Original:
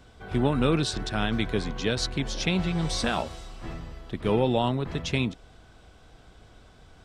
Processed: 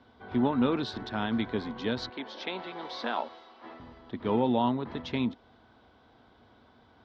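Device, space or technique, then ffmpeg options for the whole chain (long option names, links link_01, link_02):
guitar cabinet: -filter_complex "[0:a]asettb=1/sr,asplit=3[link_01][link_02][link_03];[link_01]atrim=end=2.094[link_04];[link_02]atrim=start=2.09:end=3.8,asetpts=PTS-STARTPTS,afade=type=in:duration=0.004:curve=qsin,afade=type=out:start_time=1.706:duration=0.004:curve=qsin,acrossover=split=300 5900:gain=0.0708 1 0.178[link_05][link_06][link_07];[link_05][link_06][link_07]amix=inputs=3:normalize=0[link_08];[link_03]atrim=start=3.796[link_09];[link_04][link_08]acrossfade=duration=0.004:curve1=hsin:curve2=qsin[link_10];[link_10][link_09]acrossfade=duration=0.004:curve1=qsin:curve2=hsin,highpass=110,equalizer=frequency=160:width_type=q:width=4:gain=-10,equalizer=frequency=240:width_type=q:width=4:gain=8,equalizer=frequency=930:width_type=q:width=4:gain=7,equalizer=frequency=2600:width_type=q:width=4:gain=-6,lowpass=frequency=4200:width=0.5412,lowpass=frequency=4200:width=1.3066,volume=-4.5dB"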